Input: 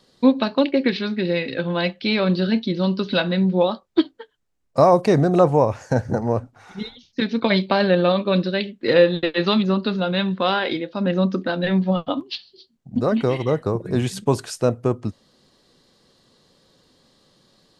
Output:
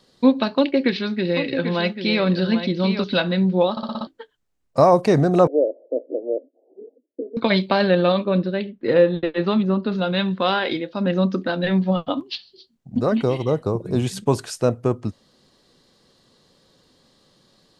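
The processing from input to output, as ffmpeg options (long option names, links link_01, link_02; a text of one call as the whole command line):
ffmpeg -i in.wav -filter_complex "[0:a]asettb=1/sr,asplit=3[link_01][link_02][link_03];[link_01]atrim=end=0.534[link_04];[link_02]atrim=start=0.53:end=3.04,asetpts=PTS-STARTPTS,afade=type=in:duration=0.004:curve=qsin,afade=type=out:start_time=2.506:duration=0.004:curve=qsin,aecho=1:1:790:0.376,atrim=end_sample=110691[link_05];[link_03]atrim=start=3.036[link_06];[link_04][link_05]acrossfade=duration=0.004:curve1=hsin:curve2=qsin[link_07];[link_07][link_06]acrossfade=duration=0.004:curve1=qsin:curve2=hsin,asettb=1/sr,asplit=3[link_08][link_09][link_10];[link_08]atrim=end=5.474[link_11];[link_09]atrim=start=5.47:end=7.37,asetpts=PTS-STARTPTS,afade=type=in:duration=0.004:curve=qsin,afade=type=out:start_time=1.896:duration=0.004:curve=qsin,asuperpass=centerf=420:order=12:qfactor=1.2[link_12];[link_10]atrim=start=7.366[link_13];[link_11][link_12]acrossfade=duration=0.004:curve1=hsin:curve2=qsin[link_14];[link_14][link_13]acrossfade=duration=0.004:curve1=qsin:curve2=hsin,asettb=1/sr,asplit=3[link_15][link_16][link_17];[link_15]atrim=end=8.254[link_18];[link_16]atrim=start=8.25:end=9.92,asetpts=PTS-STARTPTS,afade=type=in:duration=0.004:curve=qsin,afade=type=out:start_time=1.666:duration=0.004:curve=qsin,lowpass=frequency=1200:poles=1[link_19];[link_17]atrim=start=9.916[link_20];[link_18][link_19]acrossfade=duration=0.004:curve1=hsin:curve2=qsin[link_21];[link_21][link_20]acrossfade=duration=0.004:curve1=qsin:curve2=hsin,asettb=1/sr,asplit=3[link_22][link_23][link_24];[link_22]atrim=end=13.224[link_25];[link_23]atrim=start=13.22:end=14.07,asetpts=PTS-STARTPTS,afade=type=in:duration=0.004:curve=qsin,afade=type=out:start_time=0.846:duration=0.004:curve=qsin,equalizer=frequency=1800:width=2.2:gain=-9[link_26];[link_24]atrim=start=14.066[link_27];[link_25][link_26]acrossfade=duration=0.004:curve1=hsin:curve2=qsin[link_28];[link_28][link_27]acrossfade=duration=0.004:curve1=qsin:curve2=hsin,asplit=7[link_29][link_30][link_31][link_32][link_33][link_34][link_35];[link_29]atrim=end=3.772[link_36];[link_30]atrim=start=3.708:end=3.772[link_37];[link_31]atrim=start=3.708:end=3.772[link_38];[link_32]atrim=start=3.708:end=3.772[link_39];[link_33]atrim=start=3.708:end=3.772[link_40];[link_34]atrim=start=3.708:end=3.772[link_41];[link_35]atrim=start=4.068[link_42];[link_36][link_37]acrossfade=duration=0.004:curve1=hsin:curve2=hsin[link_43];[link_43][link_38]acrossfade=duration=0.004:curve1=hsin:curve2=hsin[link_44];[link_44][link_39]acrossfade=duration=0.004:curve1=hsin:curve2=hsin[link_45];[link_45][link_40]acrossfade=duration=0.004:curve1=hsin:curve2=hsin[link_46];[link_46][link_41]acrossfade=duration=0.004:curve1=hsin:curve2=hsin[link_47];[link_47][link_42]acrossfade=duration=0.004:curve1=hsin:curve2=hsin" out.wav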